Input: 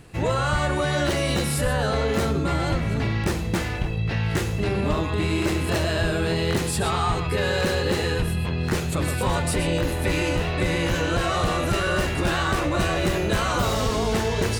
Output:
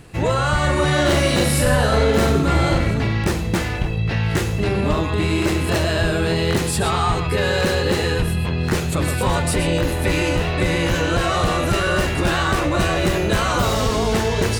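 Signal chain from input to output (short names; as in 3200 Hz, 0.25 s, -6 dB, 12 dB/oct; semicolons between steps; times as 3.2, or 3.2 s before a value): 0.6–2.91 reverse bouncing-ball echo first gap 40 ms, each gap 1.3×, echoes 5; gain +4 dB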